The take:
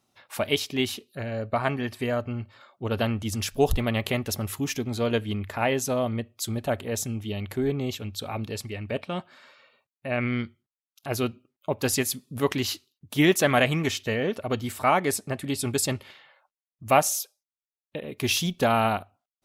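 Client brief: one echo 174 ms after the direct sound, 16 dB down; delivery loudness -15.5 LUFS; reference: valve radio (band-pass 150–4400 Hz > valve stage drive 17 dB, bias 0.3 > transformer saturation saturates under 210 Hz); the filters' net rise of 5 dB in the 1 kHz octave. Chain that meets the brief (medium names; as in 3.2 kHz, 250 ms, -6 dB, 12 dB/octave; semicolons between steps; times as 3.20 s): band-pass 150–4400 Hz; peaking EQ 1 kHz +7 dB; delay 174 ms -16 dB; valve stage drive 17 dB, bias 0.3; transformer saturation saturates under 210 Hz; trim +15 dB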